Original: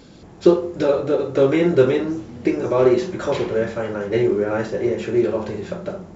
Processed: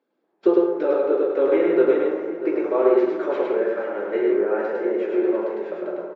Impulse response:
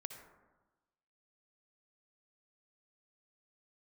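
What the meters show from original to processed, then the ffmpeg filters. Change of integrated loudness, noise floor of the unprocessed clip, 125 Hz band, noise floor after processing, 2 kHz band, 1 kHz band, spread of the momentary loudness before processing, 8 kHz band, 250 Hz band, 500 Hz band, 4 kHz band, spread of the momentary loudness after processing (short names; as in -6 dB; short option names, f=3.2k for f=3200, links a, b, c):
-1.5 dB, -43 dBFS, under -20 dB, -71 dBFS, -3.0 dB, -1.0 dB, 10 LU, n/a, -2.5 dB, -0.5 dB, under -10 dB, 8 LU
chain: -filter_complex "[0:a]highpass=f=310:w=0.5412,highpass=f=310:w=1.3066,agate=range=-22dB:threshold=-40dB:ratio=16:detection=peak,lowpass=1.9k,asplit=2[a][b];[b]adelay=641.4,volume=-12dB,highshelf=f=4k:g=-14.4[c];[a][c]amix=inputs=2:normalize=0,asplit=2[d][e];[1:a]atrim=start_sample=2205,adelay=104[f];[e][f]afir=irnorm=-1:irlink=0,volume=2.5dB[g];[d][g]amix=inputs=2:normalize=0,volume=-3.5dB"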